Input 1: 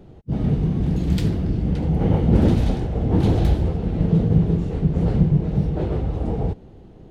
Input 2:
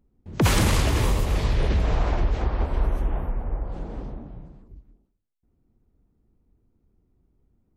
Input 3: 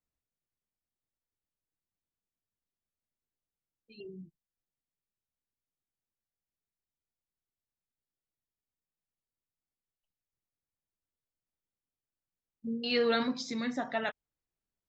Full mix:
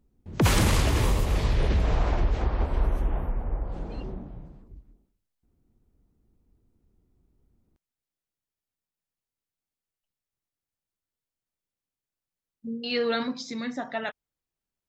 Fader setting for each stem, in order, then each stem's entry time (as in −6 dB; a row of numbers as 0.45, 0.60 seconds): muted, −1.5 dB, +1.5 dB; muted, 0.00 s, 0.00 s